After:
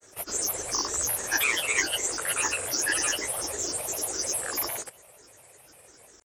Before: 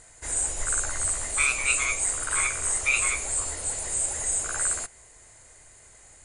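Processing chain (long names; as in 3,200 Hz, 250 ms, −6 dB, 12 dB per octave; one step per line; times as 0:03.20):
high-pass filter 100 Hz 12 dB per octave
parametric band 450 Hz +11.5 dB 0.62 octaves
granular cloud, pitch spread up and down by 7 semitones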